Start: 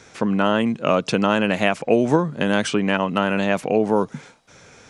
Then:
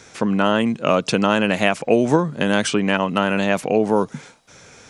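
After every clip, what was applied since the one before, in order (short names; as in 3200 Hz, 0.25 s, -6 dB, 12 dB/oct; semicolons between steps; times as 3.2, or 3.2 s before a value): high shelf 5100 Hz +5.5 dB; gain +1 dB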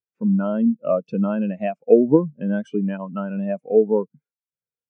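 spectral expander 2.5:1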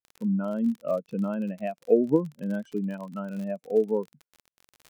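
crackle 41/s -29 dBFS; gain -7 dB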